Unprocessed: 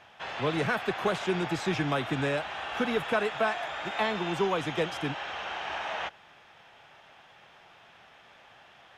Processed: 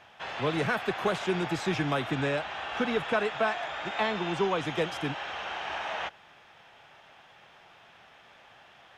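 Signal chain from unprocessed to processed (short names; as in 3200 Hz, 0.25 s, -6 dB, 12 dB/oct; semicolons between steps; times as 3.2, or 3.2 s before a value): 2.11–4.65 LPF 8100 Hz 12 dB/oct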